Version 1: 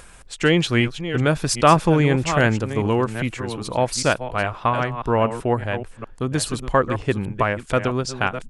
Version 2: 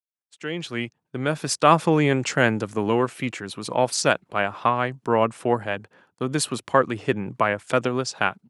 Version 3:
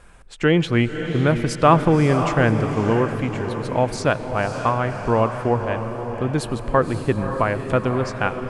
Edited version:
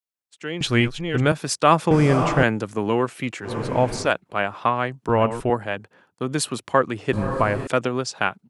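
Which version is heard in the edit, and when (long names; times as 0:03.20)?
2
0:00.61–0:01.32: punch in from 1
0:01.91–0:02.43: punch in from 3
0:03.48–0:04.07: punch in from 3, crossfade 0.16 s
0:05.09–0:05.50: punch in from 1
0:07.13–0:07.67: punch in from 3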